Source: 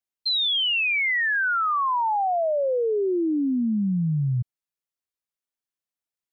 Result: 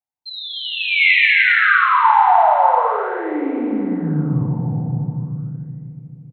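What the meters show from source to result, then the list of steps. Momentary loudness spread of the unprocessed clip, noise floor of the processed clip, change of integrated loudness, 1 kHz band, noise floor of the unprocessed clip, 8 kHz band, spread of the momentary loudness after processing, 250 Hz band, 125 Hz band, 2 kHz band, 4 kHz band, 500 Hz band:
4 LU, −42 dBFS, +7.0 dB, +11.5 dB, below −85 dBFS, can't be measured, 17 LU, +3.5 dB, +6.5 dB, +10.0 dB, +0.5 dB, +2.0 dB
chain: parametric band 100 Hz +14.5 dB 1.5 octaves
on a send: bouncing-ball delay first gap 300 ms, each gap 0.9×, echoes 5
on the sum: soft clipping −5 dBFS, distortion −25 dB
feedback delay network reverb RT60 3.9 s, high-frequency decay 0.9×, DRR −4 dB
auto-filter bell 0.41 Hz 800–2,300 Hz +18 dB
level −10.5 dB

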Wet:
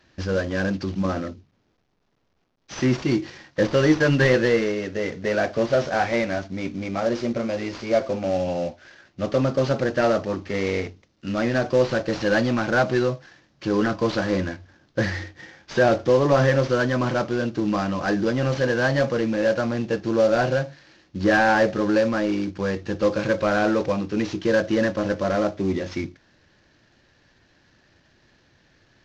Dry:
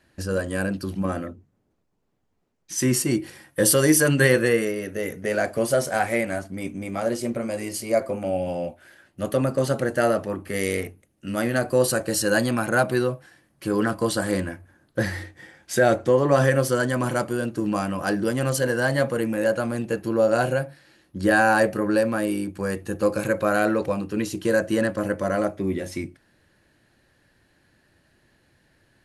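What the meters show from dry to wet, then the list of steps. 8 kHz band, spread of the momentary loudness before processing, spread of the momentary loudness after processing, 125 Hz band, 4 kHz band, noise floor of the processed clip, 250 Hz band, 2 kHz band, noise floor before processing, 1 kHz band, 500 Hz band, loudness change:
−13.0 dB, 12 LU, 10 LU, +1.0 dB, +0.5 dB, −64 dBFS, +1.5 dB, 0.0 dB, −67 dBFS, +0.5 dB, +1.0 dB, +0.5 dB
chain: variable-slope delta modulation 32 kbit/s
in parallel at −9 dB: hard clipping −24 dBFS, distortion −6 dB

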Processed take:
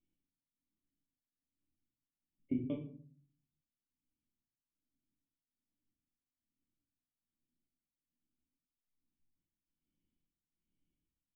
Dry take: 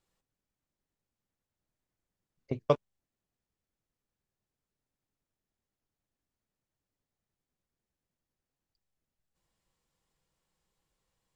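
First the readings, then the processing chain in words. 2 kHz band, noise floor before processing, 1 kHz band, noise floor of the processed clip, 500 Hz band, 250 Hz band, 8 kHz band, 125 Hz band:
below −10 dB, below −85 dBFS, below −25 dB, below −85 dBFS, −17.5 dB, +3.0 dB, can't be measured, −7.5 dB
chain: formant resonators in series i
amplitude tremolo 1.2 Hz, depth 84%
rectangular room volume 430 cubic metres, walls furnished, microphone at 2.7 metres
level +1.5 dB

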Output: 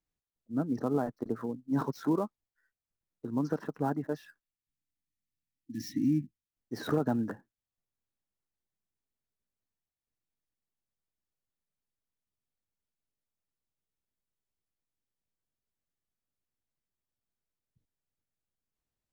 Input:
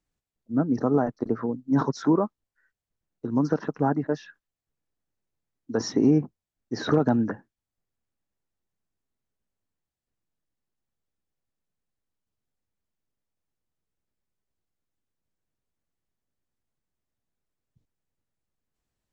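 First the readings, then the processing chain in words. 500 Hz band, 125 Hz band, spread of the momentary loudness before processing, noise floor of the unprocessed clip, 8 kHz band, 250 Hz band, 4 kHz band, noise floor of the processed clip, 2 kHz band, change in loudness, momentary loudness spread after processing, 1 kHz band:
−8.5 dB, −7.5 dB, 11 LU, below −85 dBFS, can't be measured, −7.5 dB, −9.5 dB, below −85 dBFS, −8.0 dB, −7.5 dB, 12 LU, −7.5 dB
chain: gap after every zero crossing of 0.053 ms
time-frequency box erased 0:04.44–0:06.49, 340–1,700 Hz
level −7.5 dB

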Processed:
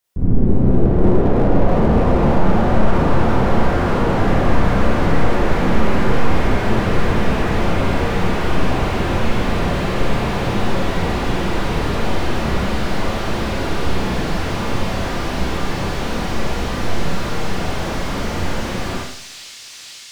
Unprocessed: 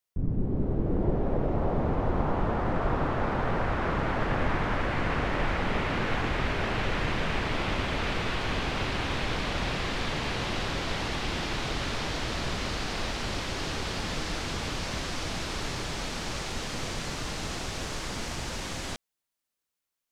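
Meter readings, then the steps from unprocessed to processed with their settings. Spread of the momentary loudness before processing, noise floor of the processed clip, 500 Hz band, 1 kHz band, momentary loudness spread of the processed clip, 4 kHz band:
5 LU, −36 dBFS, +12.5 dB, +10.5 dB, 7 LU, +4.5 dB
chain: flanger 0.75 Hz, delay 8 ms, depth 8.5 ms, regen +72%
delay with a high-pass on its return 490 ms, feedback 83%, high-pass 3,400 Hz, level −11 dB
four-comb reverb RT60 0.63 s, combs from 32 ms, DRR −4.5 dB
boost into a limiter +13.5 dB
slew-rate limiting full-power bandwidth 110 Hz
level −1 dB

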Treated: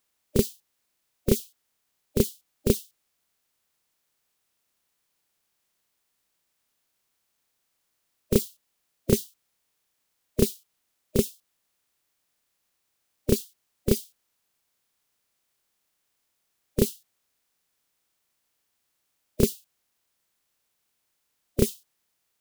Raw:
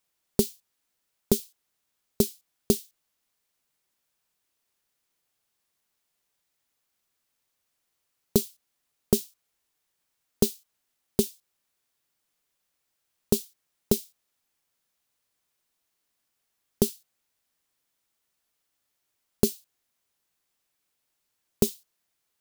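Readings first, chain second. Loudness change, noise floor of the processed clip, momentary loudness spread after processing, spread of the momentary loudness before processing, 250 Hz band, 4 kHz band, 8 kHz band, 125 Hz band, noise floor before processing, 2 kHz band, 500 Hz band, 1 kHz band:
+0.5 dB, −77 dBFS, 9 LU, 4 LU, +1.5 dB, −0.5 dB, −1.0 dB, +4.5 dB, −79 dBFS, +7.0 dB, +2.0 dB, −2.0 dB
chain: spectral magnitudes quantised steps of 30 dB
backwards echo 31 ms −4.5 dB
level +1.5 dB

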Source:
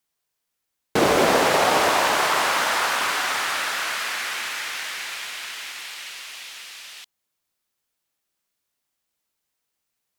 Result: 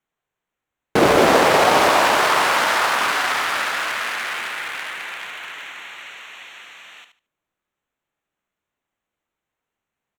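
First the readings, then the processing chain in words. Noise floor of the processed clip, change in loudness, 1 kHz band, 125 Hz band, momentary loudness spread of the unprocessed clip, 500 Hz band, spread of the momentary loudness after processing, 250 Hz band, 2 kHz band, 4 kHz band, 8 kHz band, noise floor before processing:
−85 dBFS, +4.0 dB, +4.5 dB, +4.5 dB, 17 LU, +4.5 dB, 20 LU, +4.5 dB, +3.5 dB, +1.5 dB, −0.5 dB, −80 dBFS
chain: adaptive Wiener filter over 9 samples
on a send: repeating echo 74 ms, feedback 20%, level −9.5 dB
on the sum: level +4 dB

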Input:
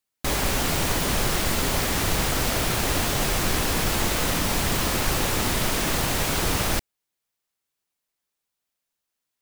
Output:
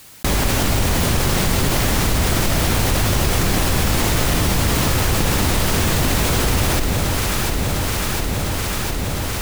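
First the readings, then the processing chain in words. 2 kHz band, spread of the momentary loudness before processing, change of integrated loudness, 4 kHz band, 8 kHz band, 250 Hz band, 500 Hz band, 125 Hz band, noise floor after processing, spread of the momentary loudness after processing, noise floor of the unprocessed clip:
+4.5 dB, 0 LU, +4.5 dB, +4.5 dB, +4.5 dB, +7.5 dB, +5.5 dB, +10.5 dB, −23 dBFS, 4 LU, −83 dBFS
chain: sub-octave generator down 1 octave, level +4 dB
delay that swaps between a low-pass and a high-pass 352 ms, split 900 Hz, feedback 80%, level −6.5 dB
envelope flattener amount 70%

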